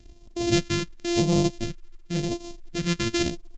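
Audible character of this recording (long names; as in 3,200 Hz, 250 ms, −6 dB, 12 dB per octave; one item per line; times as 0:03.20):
a buzz of ramps at a fixed pitch in blocks of 128 samples
phaser sweep stages 2, 0.92 Hz, lowest notch 720–1,500 Hz
mu-law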